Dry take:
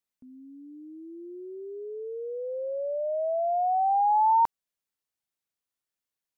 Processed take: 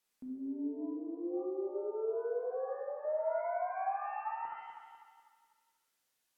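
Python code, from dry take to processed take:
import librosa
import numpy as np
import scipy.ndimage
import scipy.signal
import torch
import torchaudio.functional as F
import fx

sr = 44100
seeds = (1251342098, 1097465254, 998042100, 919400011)

y = fx.over_compress(x, sr, threshold_db=-35.0, ratio=-1.0)
y = fx.peak_eq(y, sr, hz=600.0, db=-10.5, octaves=1.6, at=(0.85, 3.05))
y = y + 10.0 ** (-8.5 / 20.0) * np.pad(y, (int(70 * sr / 1000.0), 0))[:len(y)]
y = fx.env_lowpass_down(y, sr, base_hz=1300.0, full_db=-40.0)
y = fx.peak_eq(y, sr, hz=71.0, db=-13.5, octaves=2.0)
y = fx.echo_feedback(y, sr, ms=248, feedback_pct=44, wet_db=-10.5)
y = fx.rev_shimmer(y, sr, seeds[0], rt60_s=1.0, semitones=7, shimmer_db=-8, drr_db=1.0)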